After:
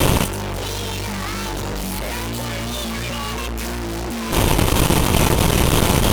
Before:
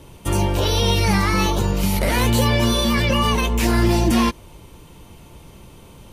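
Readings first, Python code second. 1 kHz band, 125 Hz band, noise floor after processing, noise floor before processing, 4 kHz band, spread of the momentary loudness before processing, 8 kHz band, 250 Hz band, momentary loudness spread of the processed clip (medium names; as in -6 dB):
0.0 dB, 0.0 dB, -25 dBFS, -45 dBFS, 0.0 dB, 4 LU, +5.0 dB, -1.5 dB, 10 LU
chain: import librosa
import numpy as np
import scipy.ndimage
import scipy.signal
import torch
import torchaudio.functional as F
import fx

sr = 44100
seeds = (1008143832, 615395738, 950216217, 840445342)

y = fx.vibrato(x, sr, rate_hz=3.0, depth_cents=57.0)
y = fx.fuzz(y, sr, gain_db=37.0, gate_db=-45.0)
y = fx.over_compress(y, sr, threshold_db=-25.0, ratio=-1.0)
y = F.gain(torch.from_numpy(y), 3.5).numpy()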